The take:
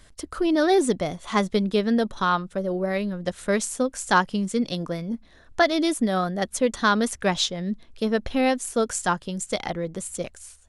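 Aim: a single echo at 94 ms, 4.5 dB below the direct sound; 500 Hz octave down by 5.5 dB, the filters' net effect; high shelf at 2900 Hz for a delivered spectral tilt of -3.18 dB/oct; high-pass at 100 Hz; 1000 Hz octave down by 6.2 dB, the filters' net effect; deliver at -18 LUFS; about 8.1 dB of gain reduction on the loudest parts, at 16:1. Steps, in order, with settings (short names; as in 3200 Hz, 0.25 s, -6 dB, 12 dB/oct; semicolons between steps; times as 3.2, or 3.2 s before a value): HPF 100 Hz; bell 500 Hz -5.5 dB; bell 1000 Hz -7.5 dB; high shelf 2900 Hz +7 dB; compressor 16:1, threshold -24 dBFS; echo 94 ms -4.5 dB; gain +10 dB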